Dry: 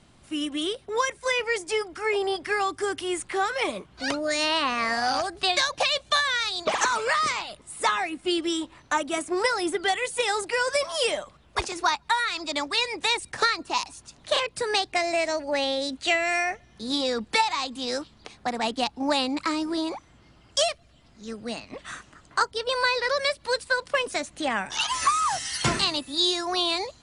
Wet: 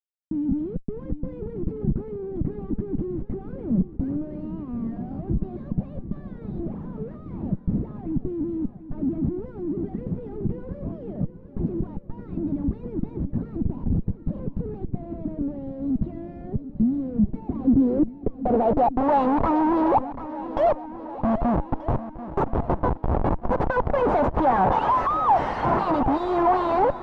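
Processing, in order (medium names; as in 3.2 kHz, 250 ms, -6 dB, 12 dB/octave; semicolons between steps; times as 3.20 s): time-frequency box 21.16–23.60 s, 430–5600 Hz -26 dB; Schmitt trigger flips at -38.5 dBFS; low-pass sweep 200 Hz -> 880 Hz, 17.30–19.11 s; shuffle delay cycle 1231 ms, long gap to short 1.5:1, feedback 44%, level -14 dB; trim +6 dB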